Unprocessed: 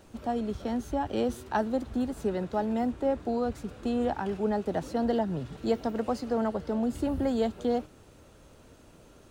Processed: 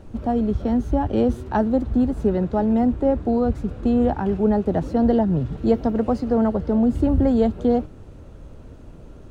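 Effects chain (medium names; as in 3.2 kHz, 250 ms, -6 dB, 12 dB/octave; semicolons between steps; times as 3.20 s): tilt EQ -3 dB/octave; trim +4.5 dB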